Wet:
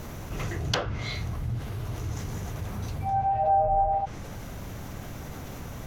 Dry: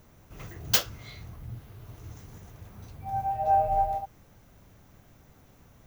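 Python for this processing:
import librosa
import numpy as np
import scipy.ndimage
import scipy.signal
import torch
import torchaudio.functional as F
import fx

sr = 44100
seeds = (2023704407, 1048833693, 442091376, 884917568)

y = fx.env_lowpass_down(x, sr, base_hz=1300.0, full_db=-22.0)
y = fx.env_flatten(y, sr, amount_pct=50)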